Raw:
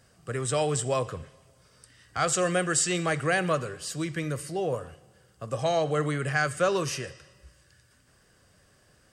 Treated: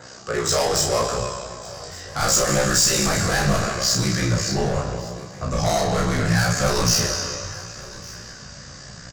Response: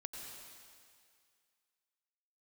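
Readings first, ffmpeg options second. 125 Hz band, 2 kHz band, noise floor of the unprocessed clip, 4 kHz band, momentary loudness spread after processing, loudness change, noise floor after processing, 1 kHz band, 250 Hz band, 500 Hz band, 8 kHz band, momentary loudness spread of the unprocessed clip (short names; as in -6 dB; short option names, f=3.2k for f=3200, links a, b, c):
+9.0 dB, +5.0 dB, -62 dBFS, +13.5 dB, 18 LU, +7.0 dB, -40 dBFS, +6.0 dB, +7.5 dB, +4.0 dB, +11.0 dB, 12 LU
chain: -filter_complex "[0:a]asplit=2[a][b];[1:a]atrim=start_sample=2205[c];[b][c]afir=irnorm=-1:irlink=0,volume=-1.5dB[d];[a][d]amix=inputs=2:normalize=0,aresample=16000,aresample=44100,aeval=exprs='val(0)*sin(2*PI*32*n/s)':c=same,adynamicequalizer=threshold=0.00282:dfrequency=5300:dqfactor=2.3:tfrequency=5300:tqfactor=2.3:attack=5:release=100:ratio=0.375:range=3:mode=boostabove:tftype=bell,acompressor=mode=upward:threshold=-46dB:ratio=2.5,asplit=2[e][f];[f]highpass=f=720:p=1,volume=26dB,asoftclip=type=tanh:threshold=-9dB[g];[e][g]amix=inputs=2:normalize=0,lowpass=f=1.3k:p=1,volume=-6dB,aecho=1:1:1161:0.0841,asubboost=boost=8:cutoff=140,asoftclip=type=tanh:threshold=-10.5dB,asplit=2[h][i];[i]adelay=35,volume=-3dB[j];[h][j]amix=inputs=2:normalize=0,aexciter=amount=7.3:drive=3:freq=4.3k,flanger=delay=15.5:depth=5.8:speed=0.75"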